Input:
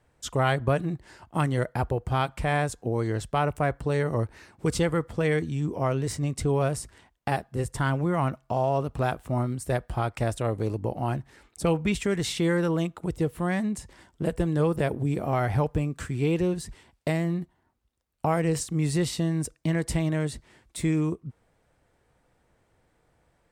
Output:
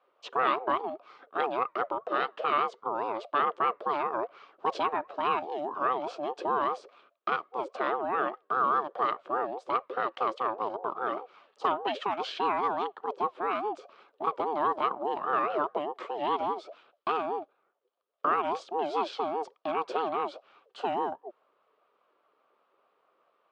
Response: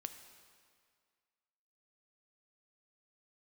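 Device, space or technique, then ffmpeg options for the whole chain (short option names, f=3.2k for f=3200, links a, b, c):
voice changer toy: -filter_complex "[0:a]asettb=1/sr,asplit=3[a][b][c];[a]atrim=end=11.124[d];[b]atrim=start=11.12:end=11.68,asetpts=PTS-STARTPTS,afade=t=in:d=0.004:c=qsin,afade=t=out:st=0.556:d=0.004:c=qsin,asplit=2[e][f];[f]adelay=47,volume=-7dB[g];[e][g]amix=inputs=2:normalize=0,atrim=end_sample=24696[h];[c]atrim=start=11.676[i];[d][h]acrossfade=d=0.004:c1=hsin:c2=qsin[j];[j][i]acrossfade=d=0.004:c1=qsin:c2=hsin,aeval=exprs='val(0)*sin(2*PI*540*n/s+540*0.2/4.9*sin(2*PI*4.9*n/s))':c=same,highpass=410,equalizer=f=430:t=q:w=4:g=4,equalizer=f=1.2k:t=q:w=4:g=10,equalizer=f=2k:t=q:w=4:g=-4,equalizer=f=3.1k:t=q:w=4:g=3,lowpass=f=4.2k:w=0.5412,lowpass=f=4.2k:w=1.3066,volume=-2dB"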